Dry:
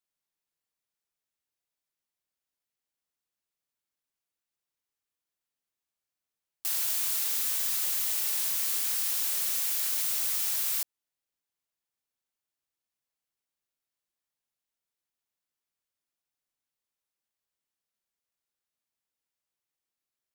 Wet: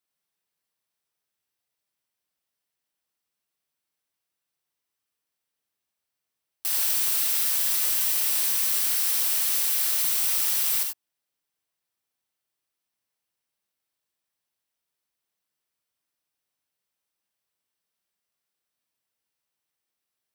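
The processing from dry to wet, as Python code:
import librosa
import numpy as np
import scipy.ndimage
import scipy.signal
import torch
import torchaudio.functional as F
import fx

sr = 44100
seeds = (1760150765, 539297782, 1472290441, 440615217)

y = scipy.signal.sosfilt(scipy.signal.butter(2, 64.0, 'highpass', fs=sr, output='sos'), x)
y = fx.notch(y, sr, hz=6800.0, q=10.0)
y = fx.rev_gated(y, sr, seeds[0], gate_ms=110, shape='rising', drr_db=3.0)
y = y * librosa.db_to_amplitude(3.5)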